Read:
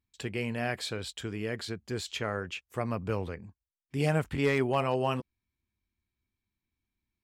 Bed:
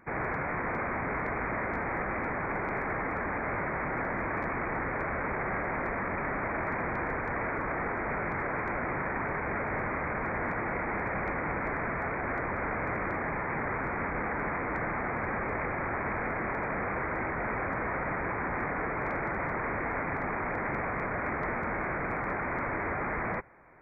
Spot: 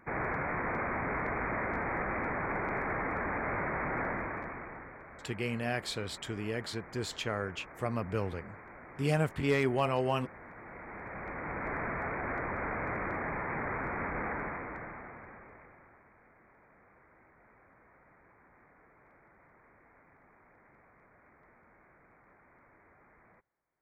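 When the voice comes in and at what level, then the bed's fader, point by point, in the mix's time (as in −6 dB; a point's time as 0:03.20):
5.05 s, −1.5 dB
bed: 0:04.08 −1.5 dB
0:05.03 −18 dB
0:10.48 −18 dB
0:11.75 −3 dB
0:14.31 −3 dB
0:16.10 −30 dB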